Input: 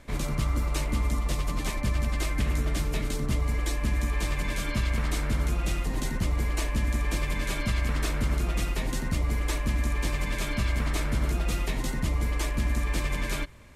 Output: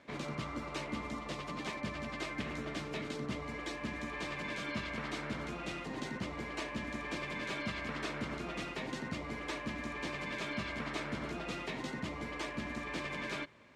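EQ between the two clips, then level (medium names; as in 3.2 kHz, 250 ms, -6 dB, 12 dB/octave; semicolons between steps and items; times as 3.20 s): band-pass 200–4300 Hz; -4.5 dB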